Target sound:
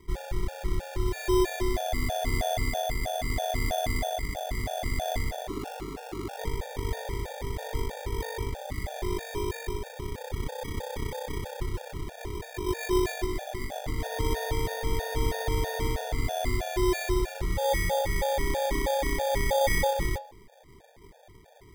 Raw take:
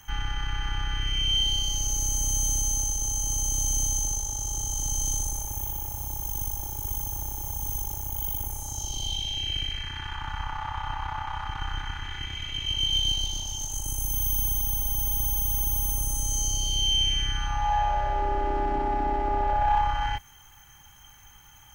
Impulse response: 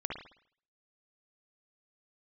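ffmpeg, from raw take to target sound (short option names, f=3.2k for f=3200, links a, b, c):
-filter_complex "[0:a]acrusher=samples=32:mix=1:aa=0.000001,bandreject=f=209.7:t=h:w=4,bandreject=f=419.4:t=h:w=4,bandreject=f=629.1:t=h:w=4,bandreject=f=838.8:t=h:w=4,bandreject=f=1.0485k:t=h:w=4,bandreject=f=1.2582k:t=h:w=4,bandreject=f=1.4679k:t=h:w=4,bandreject=f=1.6776k:t=h:w=4,bandreject=f=1.8873k:t=h:w=4,bandreject=f=2.097k:t=h:w=4,bandreject=f=2.3067k:t=h:w=4,bandreject=f=2.5164k:t=h:w=4,bandreject=f=2.7261k:t=h:w=4,bandreject=f=2.9358k:t=h:w=4,bandreject=f=3.1455k:t=h:w=4,bandreject=f=3.3552k:t=h:w=4,bandreject=f=3.5649k:t=h:w=4,bandreject=f=3.7746k:t=h:w=4,bandreject=f=3.9843k:t=h:w=4,bandreject=f=4.194k:t=h:w=4,bandreject=f=4.4037k:t=h:w=4,bandreject=f=4.6134k:t=h:w=4,bandreject=f=4.8231k:t=h:w=4,bandreject=f=5.0328k:t=h:w=4,bandreject=f=5.2425k:t=h:w=4,bandreject=f=5.4522k:t=h:w=4,bandreject=f=5.6619k:t=h:w=4,bandreject=f=5.8716k:t=h:w=4,bandreject=f=6.0813k:t=h:w=4,bandreject=f=6.291k:t=h:w=4,bandreject=f=6.5007k:t=h:w=4,bandreject=f=6.7104k:t=h:w=4,bandreject=f=6.9201k:t=h:w=4,bandreject=f=7.1298k:t=h:w=4,bandreject=f=7.3395k:t=h:w=4,bandreject=f=7.5492k:t=h:w=4,bandreject=f=7.7589k:t=h:w=4,bandreject=f=7.9686k:t=h:w=4,asplit=3[a][b][c];[a]afade=t=out:st=5.47:d=0.02[d];[b]aeval=exprs='val(0)*sin(2*PI*350*n/s)':c=same,afade=t=in:st=5.47:d=0.02,afade=t=out:st=6.37:d=0.02[e];[c]afade=t=in:st=6.37:d=0.02[f];[d][e][f]amix=inputs=3:normalize=0,asplit=2[g][h];[1:a]atrim=start_sample=2205,asetrate=57330,aresample=44100,lowshelf=f=200:g=7[i];[h][i]afir=irnorm=-1:irlink=0,volume=-13.5dB[j];[g][j]amix=inputs=2:normalize=0,afftfilt=real='re*gt(sin(2*PI*3.1*pts/sr)*(1-2*mod(floor(b*sr/1024/470),2)),0)':imag='im*gt(sin(2*PI*3.1*pts/sr)*(1-2*mod(floor(b*sr/1024/470),2)),0)':win_size=1024:overlap=0.75"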